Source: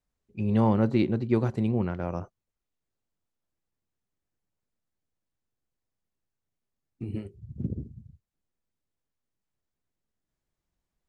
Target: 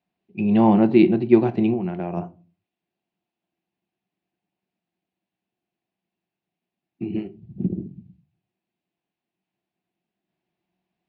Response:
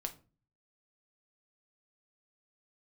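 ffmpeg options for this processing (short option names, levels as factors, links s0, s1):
-filter_complex "[0:a]asettb=1/sr,asplit=3[s0][s1][s2];[s0]atrim=end=1.734[s3];[s1]atrim=start=1.73:end=2.17,asetpts=PTS-STARTPTS,afade=t=in:d=0.004:c=qsin,afade=t=out:st=0.436:d=0.004:c=qsin,acompressor=threshold=0.0355:ratio=10[s4];[s2]atrim=start=2.166[s5];[s3][s4]acrossfade=d=0.004:c1=hsin:c2=qsin[s6];[s6][s5]acrossfade=d=0.004:c1=qsin:c2=hsin,highpass=160,equalizer=f=190:t=q:w=4:g=9,equalizer=f=350:t=q:w=4:g=8,equalizer=f=500:t=q:w=4:g=-6,equalizer=f=720:t=q:w=4:g=9,equalizer=f=1300:t=q:w=4:g=-6,equalizer=f=2600:t=q:w=4:g=7,lowpass=f=4100:w=0.5412,lowpass=f=4100:w=1.3066,asplit=2[s7][s8];[1:a]atrim=start_sample=2205,afade=t=out:st=0.45:d=0.01,atrim=end_sample=20286[s9];[s8][s9]afir=irnorm=-1:irlink=0,volume=1.06[s10];[s7][s10]amix=inputs=2:normalize=0,volume=0.891"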